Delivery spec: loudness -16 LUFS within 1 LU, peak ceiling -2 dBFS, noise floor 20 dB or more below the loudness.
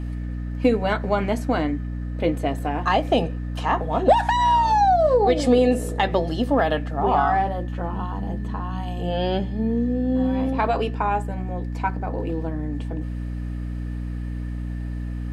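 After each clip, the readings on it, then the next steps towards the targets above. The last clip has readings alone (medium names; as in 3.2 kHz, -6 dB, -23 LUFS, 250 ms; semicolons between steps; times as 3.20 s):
hum 60 Hz; highest harmonic 300 Hz; hum level -26 dBFS; loudness -23.0 LUFS; peak level -6.5 dBFS; loudness target -16.0 LUFS
-> hum notches 60/120/180/240/300 Hz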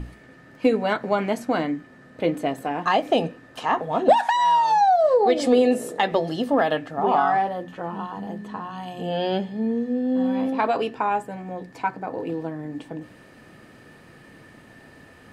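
hum not found; loudness -23.0 LUFS; peak level -6.5 dBFS; loudness target -16.0 LUFS
-> trim +7 dB; peak limiter -2 dBFS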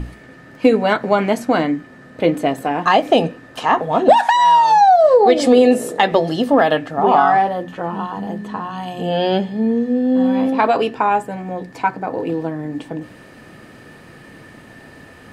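loudness -16.0 LUFS; peak level -2.0 dBFS; noise floor -42 dBFS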